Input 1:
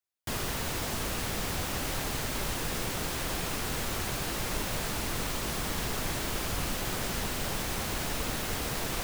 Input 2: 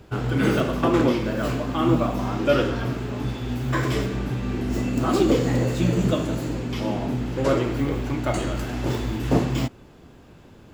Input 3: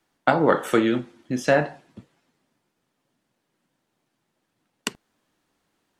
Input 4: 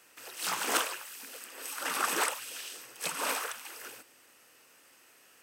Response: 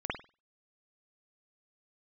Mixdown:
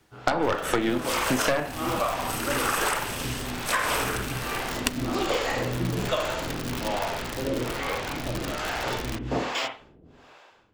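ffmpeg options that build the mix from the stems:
-filter_complex "[0:a]lowpass=3.8k,aeval=exprs='(mod(20*val(0)+1,2)-1)/20':c=same,adelay=150,volume=-2.5dB,asplit=2[a][b];[b]volume=-16.5dB[c];[1:a]acrossover=split=530 6900:gain=0.2 1 0.178[d][e][f];[d][e][f]amix=inputs=3:normalize=0,dynaudnorm=f=150:g=7:m=15dB,acrossover=split=420[g][h];[g]aeval=exprs='val(0)*(1-1/2+1/2*cos(2*PI*1.2*n/s))':c=same[i];[h]aeval=exprs='val(0)*(1-1/2-1/2*cos(2*PI*1.2*n/s))':c=same[j];[i][j]amix=inputs=2:normalize=0,volume=-7.5dB,asplit=2[k][l];[l]volume=-9dB[m];[2:a]lowshelf=f=270:g=-6,aeval=exprs='0.75*(cos(1*acos(clip(val(0)/0.75,-1,1)))-cos(1*PI/2))+0.266*(cos(5*acos(clip(val(0)/0.75,-1,1)))-cos(5*PI/2))+0.15*(cos(8*acos(clip(val(0)/0.75,-1,1)))-cos(8*PI/2))':c=same,volume=0dB[n];[3:a]adelay=650,volume=1.5dB,asplit=2[o][p];[p]volume=-3dB[q];[4:a]atrim=start_sample=2205[r];[c][m][q]amix=inputs=3:normalize=0[s];[s][r]afir=irnorm=-1:irlink=0[t];[a][k][n][o][t]amix=inputs=5:normalize=0,acompressor=threshold=-21dB:ratio=6"

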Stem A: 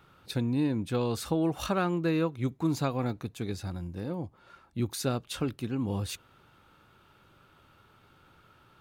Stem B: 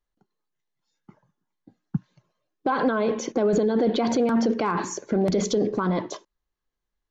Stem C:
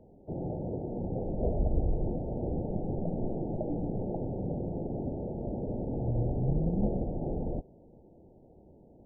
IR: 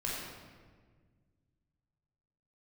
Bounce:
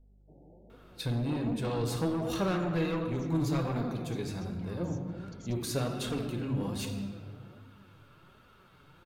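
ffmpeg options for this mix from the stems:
-filter_complex "[0:a]adelay=700,volume=0dB,asplit=2[a][b];[b]volume=-3.5dB[c];[1:a]aeval=exprs='val(0)+0.0178*(sin(2*PI*50*n/s)+sin(2*PI*2*50*n/s)/2+sin(2*PI*3*50*n/s)/3+sin(2*PI*4*50*n/s)/4+sin(2*PI*5*50*n/s)/5)':c=same,equalizer=f=570:w=0.32:g=-13.5,volume=-16dB[d];[2:a]highpass=170,volume=-16.5dB[e];[3:a]atrim=start_sample=2205[f];[c][f]afir=irnorm=-1:irlink=0[g];[a][d][e][g]amix=inputs=4:normalize=0,asoftclip=type=tanh:threshold=-21.5dB,flanger=delay=4:depth=3.2:regen=48:speed=1.3:shape=triangular"

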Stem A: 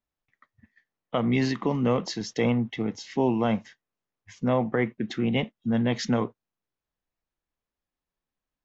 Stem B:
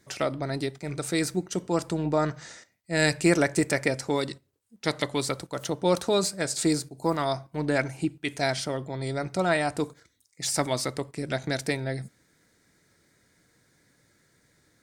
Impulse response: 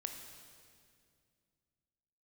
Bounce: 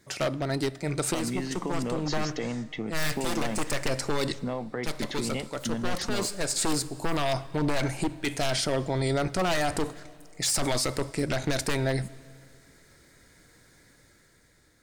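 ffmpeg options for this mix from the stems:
-filter_complex "[0:a]acompressor=threshold=-29dB:ratio=6,volume=-5.5dB,asplit=2[a][b];[1:a]bandreject=f=5.9k:w=27,aeval=exprs='0.0794*(abs(mod(val(0)/0.0794+3,4)-2)-1)':c=same,volume=0.5dB,asplit=2[c][d];[d]volume=-14dB[e];[b]apad=whole_len=654000[f];[c][f]sidechaincompress=threshold=-46dB:ratio=8:attack=7.1:release=650[g];[2:a]atrim=start_sample=2205[h];[e][h]afir=irnorm=-1:irlink=0[i];[a][g][i]amix=inputs=3:normalize=0,asubboost=boost=4:cutoff=60,dynaudnorm=f=220:g=9:m=6dB,alimiter=limit=-18.5dB:level=0:latency=1:release=26"

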